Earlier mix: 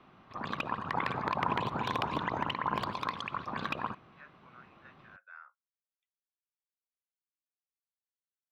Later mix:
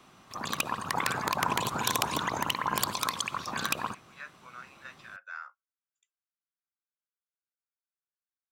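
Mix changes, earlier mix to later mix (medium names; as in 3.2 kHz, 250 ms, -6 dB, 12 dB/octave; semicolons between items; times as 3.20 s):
speech +7.0 dB; master: remove distance through air 360 m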